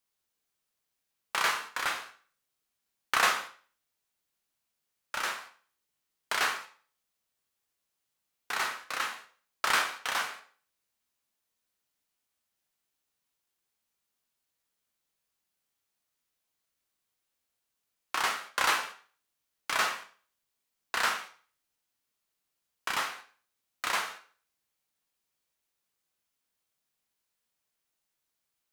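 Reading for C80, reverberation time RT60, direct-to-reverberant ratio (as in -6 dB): 16.0 dB, 0.40 s, 5.0 dB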